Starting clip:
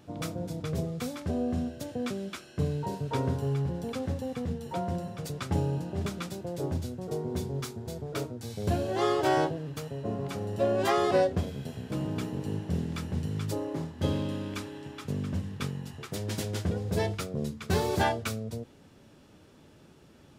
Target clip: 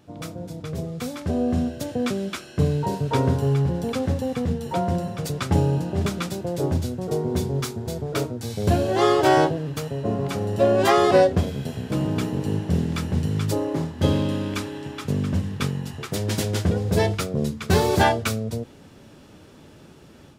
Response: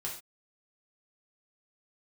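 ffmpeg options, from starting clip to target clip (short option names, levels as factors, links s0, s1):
-af "dynaudnorm=f=780:g=3:m=2.66"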